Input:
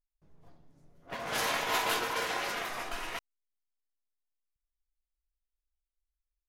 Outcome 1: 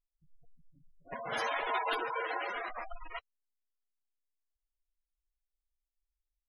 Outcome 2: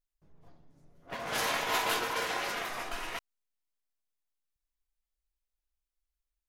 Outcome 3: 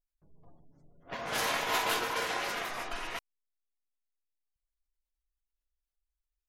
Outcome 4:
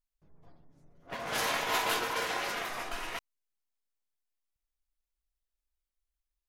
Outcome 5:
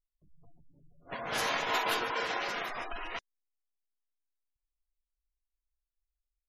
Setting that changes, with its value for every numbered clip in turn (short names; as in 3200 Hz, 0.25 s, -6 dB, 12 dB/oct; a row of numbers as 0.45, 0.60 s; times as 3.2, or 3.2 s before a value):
spectral gate, under each frame's peak: -10, -60, -35, -50, -20 dB